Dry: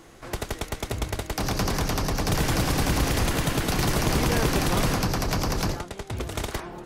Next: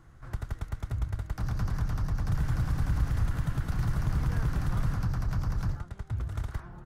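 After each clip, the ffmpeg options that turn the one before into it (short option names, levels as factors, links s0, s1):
-filter_complex "[0:a]firequalizer=gain_entry='entry(120,0);entry(210,-12);entry(400,-20);entry(1400,-9);entry(2400,-21)':delay=0.05:min_phase=1,asplit=2[s0][s1];[s1]acompressor=threshold=0.0224:ratio=6,volume=0.891[s2];[s0][s2]amix=inputs=2:normalize=0,volume=0.708"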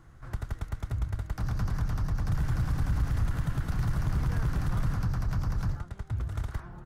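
-af "asoftclip=type=tanh:threshold=0.126,volume=1.12"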